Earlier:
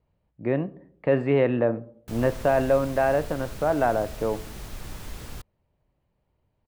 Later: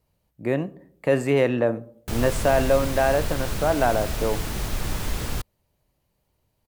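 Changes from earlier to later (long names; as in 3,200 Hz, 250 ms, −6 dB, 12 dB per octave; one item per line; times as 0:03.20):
speech: remove high-frequency loss of the air 370 metres
background +10.5 dB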